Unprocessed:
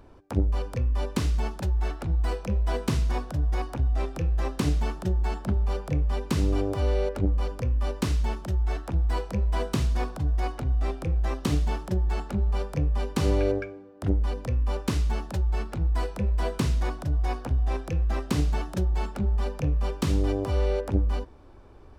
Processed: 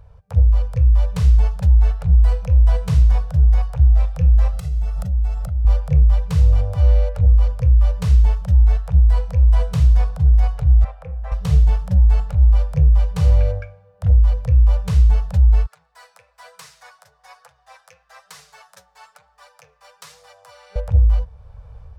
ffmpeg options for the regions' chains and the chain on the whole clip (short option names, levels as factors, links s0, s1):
-filter_complex "[0:a]asettb=1/sr,asplit=3[s0][s1][s2];[s0]atrim=end=4.534[s3];[s1]atrim=start=4.53:end=5.65,asetpts=PTS-STARTPTS,afade=t=in:d=0.004:c=qsin,afade=t=out:st=1.116:d=0.004:c=qsin,highshelf=f=7200:g=7,acompressor=threshold=0.0178:ratio=16:attack=3.2:release=140:knee=1:detection=peak,aecho=1:1:1.5:0.82,atrim=end_sample=49392[s4];[s2]atrim=start=5.646[s5];[s3][s4]acrossfade=d=0.004:c1=hsin:c2=qsin[s6];[s6][s5]acrossfade=d=0.004:c1=qsin:c2=hsin,asettb=1/sr,asplit=3[s7][s8][s9];[s7]atrim=end=10.844[s10];[s8]atrim=start=10.84:end=11.32,asetpts=PTS-STARTPTS,afade=t=in:d=0.004:c=qsin,afade=t=out:st=0.476:d=0.004:c=qsin,acrossover=split=400 2300:gain=0.158 1 0.158[s11][s12][s13];[s11][s12][s13]amix=inputs=3:normalize=0,acompressor=mode=upward:threshold=0.01:ratio=2.5:attack=3.2:release=140:knee=2.83:detection=peak[s14];[s9]atrim=start=11.316[s15];[s10][s14]acrossfade=d=0.004:c1=hsin:c2=qsin[s16];[s16][s15]acrossfade=d=0.004:c1=qsin:c2=hsin,asettb=1/sr,asplit=3[s17][s18][s19];[s17]atrim=end=15.664[s20];[s18]atrim=start=15.66:end=20.76,asetpts=PTS-STARTPTS,afade=t=in:d=0.004:c=qsin,afade=t=out:st=5.096:d=0.004:c=qsin,highpass=1300,equalizer=f=2900:t=o:w=0.83:g=-6.5,flanger=delay=5.8:depth=3.8:regen=32:speed=1.1:shape=triangular[s21];[s19]atrim=start=20.756[s22];[s20][s21]acrossfade=d=0.004:c1=hsin:c2=qsin[s23];[s23][s22]acrossfade=d=0.004:c1=qsin:c2=hsin,afftfilt=real='re*(1-between(b*sr/4096,190,420))':imag='im*(1-between(b*sr/4096,190,420))':win_size=4096:overlap=0.75,equalizer=f=63:w=0.35:g=14.5,dynaudnorm=f=230:g=3:m=1.78,volume=0.668"